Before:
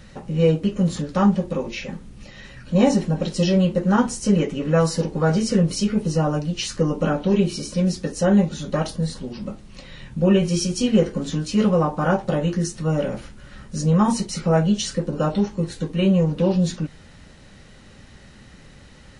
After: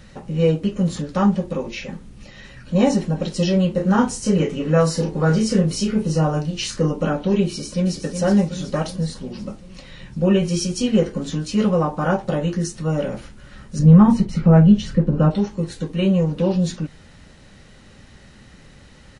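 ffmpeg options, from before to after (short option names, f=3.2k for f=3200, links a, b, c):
-filter_complex "[0:a]asettb=1/sr,asplit=3[a][b][c];[a]atrim=end=3.754[d];[b]atrim=start=3.75:end=6.91,asetpts=PTS-STARTPTS,afade=t=in:d=0.004:c=qsin,afade=t=out:st=3.156:d=0.004:c=qsin,asplit=2[e][f];[f]adelay=32,volume=-5.5dB[g];[e][g]amix=inputs=2:normalize=0,atrim=end_sample=139356[h];[c]atrim=start=6.906[i];[d][h]acrossfade=d=0.004:c1=hsin:c2=qsin[j];[j][i]acrossfade=d=0.004:c1=qsin:c2=hsin,asplit=2[k][l];[l]afade=t=in:st=7.48:d=0.01,afade=t=out:st=8:d=0.01,aecho=0:1:370|740|1110|1480|1850|2220|2590|2960:0.421697|0.253018|0.151811|0.0910864|0.0546519|0.0327911|0.0196747|0.0118048[m];[k][m]amix=inputs=2:normalize=0,asettb=1/sr,asplit=3[n][o][p];[n]atrim=end=13.794[q];[o]atrim=start=13.79:end=15.31,asetpts=PTS-STARTPTS,afade=t=in:d=0.004:c=qsin,afade=t=out:st=1.516:d=0.004:c=qsin,bass=f=250:g=11,treble=f=4k:g=-15[r];[p]atrim=start=15.306[s];[q][r]acrossfade=d=0.004:c1=hsin:c2=qsin[t];[t][s]acrossfade=d=0.004:c1=qsin:c2=hsin"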